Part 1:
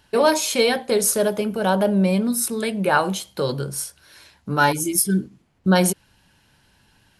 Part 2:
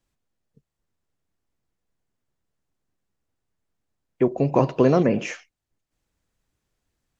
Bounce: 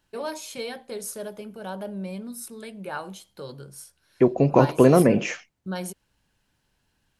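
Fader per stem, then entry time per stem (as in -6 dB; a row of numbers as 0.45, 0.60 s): -15.0, +2.0 dB; 0.00, 0.00 s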